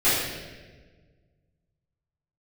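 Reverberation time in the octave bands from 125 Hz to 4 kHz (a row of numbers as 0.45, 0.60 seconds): 2.4, 1.9, 1.7, 1.2, 1.3, 1.1 seconds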